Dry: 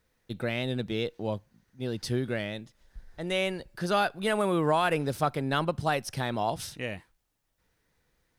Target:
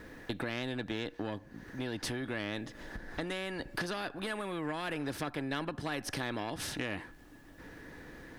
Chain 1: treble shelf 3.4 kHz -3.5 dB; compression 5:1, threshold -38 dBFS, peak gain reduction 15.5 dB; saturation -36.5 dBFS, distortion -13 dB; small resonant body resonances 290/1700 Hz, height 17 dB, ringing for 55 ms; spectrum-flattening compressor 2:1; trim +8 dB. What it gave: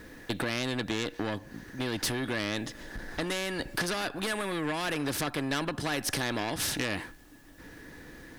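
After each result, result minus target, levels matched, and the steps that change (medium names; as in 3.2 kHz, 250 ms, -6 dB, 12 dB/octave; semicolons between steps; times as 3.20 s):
compression: peak gain reduction -7.5 dB; 8 kHz band +4.5 dB
change: compression 5:1, threshold -47.5 dBFS, peak gain reduction 23 dB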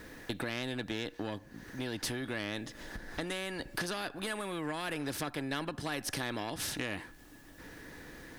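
8 kHz band +4.0 dB
change: treble shelf 3.4 kHz -12.5 dB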